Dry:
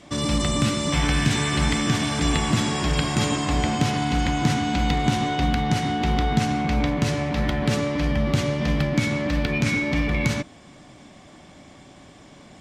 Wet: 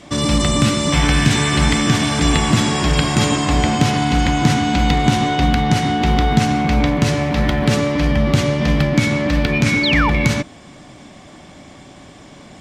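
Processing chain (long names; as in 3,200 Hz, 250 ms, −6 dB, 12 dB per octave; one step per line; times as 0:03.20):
0:06.01–0:08.06: surface crackle 150 per second −44 dBFS
0:09.83–0:10.10: sound drawn into the spectrogram fall 790–4,700 Hz −25 dBFS
level +6.5 dB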